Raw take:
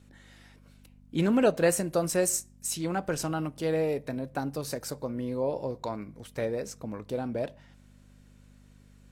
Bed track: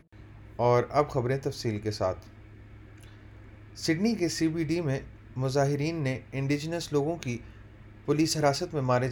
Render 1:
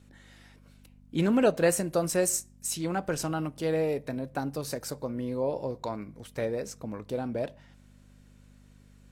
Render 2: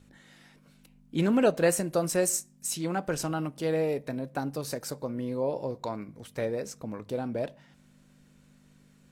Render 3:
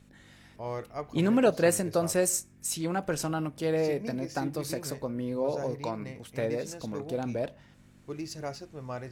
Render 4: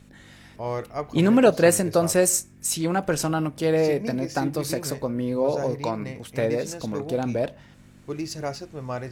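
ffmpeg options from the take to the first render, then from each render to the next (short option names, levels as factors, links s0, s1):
-af anull
-af "bandreject=f=50:t=h:w=4,bandreject=f=100:t=h:w=4"
-filter_complex "[1:a]volume=0.237[s0];[0:a][s0]amix=inputs=2:normalize=0"
-af "volume=2.11"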